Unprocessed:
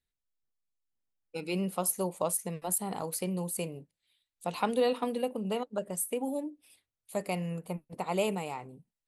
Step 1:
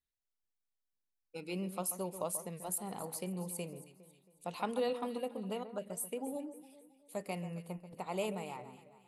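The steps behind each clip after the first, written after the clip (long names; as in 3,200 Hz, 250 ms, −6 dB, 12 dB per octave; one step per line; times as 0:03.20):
delay that swaps between a low-pass and a high-pass 136 ms, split 1,900 Hz, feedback 63%, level −11 dB
level −7 dB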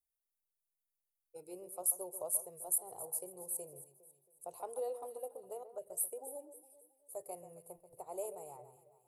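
drawn EQ curve 140 Hz 0 dB, 210 Hz −28 dB, 360 Hz +1 dB, 680 Hz +4 dB, 1,800 Hz −16 dB, 3,400 Hz −18 dB, 10,000 Hz +13 dB
level −7 dB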